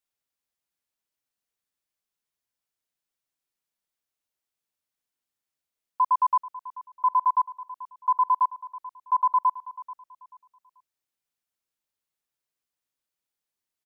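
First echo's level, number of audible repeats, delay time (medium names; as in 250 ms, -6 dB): -17.0 dB, 2, 436 ms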